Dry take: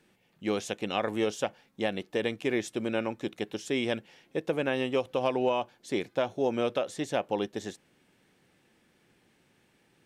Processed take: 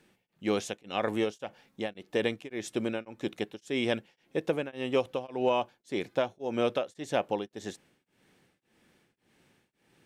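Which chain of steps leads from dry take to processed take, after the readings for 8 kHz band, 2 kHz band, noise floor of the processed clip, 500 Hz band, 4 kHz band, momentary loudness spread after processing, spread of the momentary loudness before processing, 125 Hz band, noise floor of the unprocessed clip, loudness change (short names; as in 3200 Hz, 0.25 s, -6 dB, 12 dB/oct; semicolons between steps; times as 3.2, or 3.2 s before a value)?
-2.5 dB, -2.0 dB, -77 dBFS, -1.0 dB, -1.0 dB, 9 LU, 7 LU, -1.5 dB, -68 dBFS, -1.0 dB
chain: beating tremolo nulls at 1.8 Hz; gain +1.5 dB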